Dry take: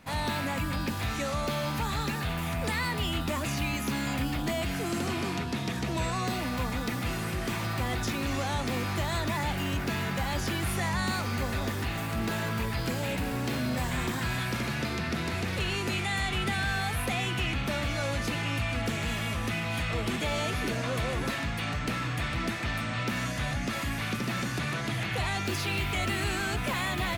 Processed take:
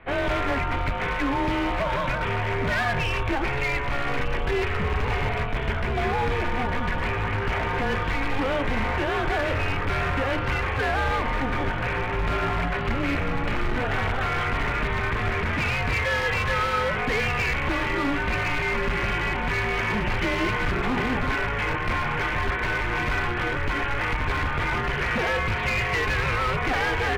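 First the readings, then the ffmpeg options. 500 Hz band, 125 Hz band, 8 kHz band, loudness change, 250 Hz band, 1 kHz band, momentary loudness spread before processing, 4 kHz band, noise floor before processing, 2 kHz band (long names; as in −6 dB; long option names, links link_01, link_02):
+7.5 dB, +2.5 dB, −6.5 dB, +5.5 dB, +1.5 dB, +7.5 dB, 2 LU, +0.5 dB, −33 dBFS, +7.5 dB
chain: -filter_complex "[0:a]asplit=2[link_01][link_02];[link_02]acrusher=bits=6:dc=4:mix=0:aa=0.000001,volume=-6dB[link_03];[link_01][link_03]amix=inputs=2:normalize=0,highpass=frequency=170:width_type=q:width=0.5412,highpass=frequency=170:width_type=q:width=1.307,lowpass=frequency=3000:width_type=q:width=0.5176,lowpass=frequency=3000:width_type=q:width=0.7071,lowpass=frequency=3000:width_type=q:width=1.932,afreqshift=-270,asoftclip=type=hard:threshold=-26.5dB,bandreject=frequency=62.12:width_type=h:width=4,bandreject=frequency=124.24:width_type=h:width=4,bandreject=frequency=186.36:width_type=h:width=4,bandreject=frequency=248.48:width_type=h:width=4,bandreject=frequency=310.6:width_type=h:width=4,bandreject=frequency=372.72:width_type=h:width=4,bandreject=frequency=434.84:width_type=h:width=4,bandreject=frequency=496.96:width_type=h:width=4,bandreject=frequency=559.08:width_type=h:width=4,bandreject=frequency=621.2:width_type=h:width=4,bandreject=frequency=683.32:width_type=h:width=4,bandreject=frequency=745.44:width_type=h:width=4,bandreject=frequency=807.56:width_type=h:width=4,bandreject=frequency=869.68:width_type=h:width=4,bandreject=frequency=931.8:width_type=h:width=4,bandreject=frequency=993.92:width_type=h:width=4,bandreject=frequency=1056.04:width_type=h:width=4,bandreject=frequency=1118.16:width_type=h:width=4,bandreject=frequency=1180.28:width_type=h:width=4,bandreject=frequency=1242.4:width_type=h:width=4,bandreject=frequency=1304.52:width_type=h:width=4,bandreject=frequency=1366.64:width_type=h:width=4,bandreject=frequency=1428.76:width_type=h:width=4,bandreject=frequency=1490.88:width_type=h:width=4,bandreject=frequency=1553:width_type=h:width=4,bandreject=frequency=1615.12:width_type=h:width=4,bandreject=frequency=1677.24:width_type=h:width=4,bandreject=frequency=1739.36:width_type=h:width=4,bandreject=frequency=1801.48:width_type=h:width=4,volume=6.5dB"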